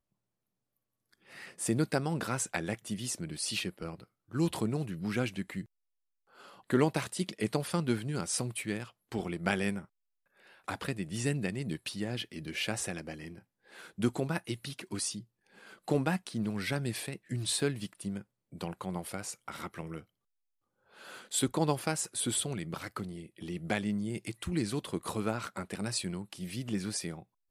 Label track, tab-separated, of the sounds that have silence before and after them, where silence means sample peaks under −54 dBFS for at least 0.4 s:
1.130000	5.660000	sound
6.340000	9.850000	sound
10.400000	20.040000	sound